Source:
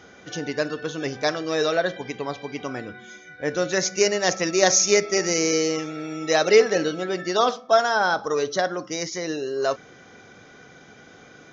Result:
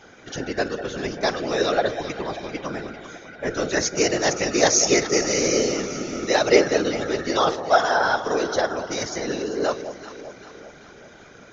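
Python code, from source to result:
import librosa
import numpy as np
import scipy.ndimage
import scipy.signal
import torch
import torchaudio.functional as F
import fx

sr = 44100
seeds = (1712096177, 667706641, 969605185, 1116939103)

y = fx.whisperise(x, sr, seeds[0])
y = fx.echo_alternate(y, sr, ms=196, hz=870.0, feedback_pct=73, wet_db=-9.5)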